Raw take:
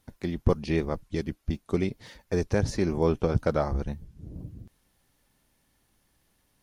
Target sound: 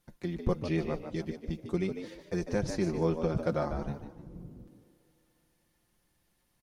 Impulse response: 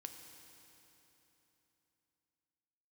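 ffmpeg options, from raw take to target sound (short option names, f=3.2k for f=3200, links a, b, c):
-filter_complex "[0:a]aecho=1:1:5.7:0.62,asplit=5[a][b][c][d][e];[b]adelay=149,afreqshift=73,volume=-9dB[f];[c]adelay=298,afreqshift=146,volume=-18.9dB[g];[d]adelay=447,afreqshift=219,volume=-28.8dB[h];[e]adelay=596,afreqshift=292,volume=-38.7dB[i];[a][f][g][h][i]amix=inputs=5:normalize=0,asplit=2[j][k];[1:a]atrim=start_sample=2205[l];[k][l]afir=irnorm=-1:irlink=0,volume=-12.5dB[m];[j][m]amix=inputs=2:normalize=0,volume=-7.5dB"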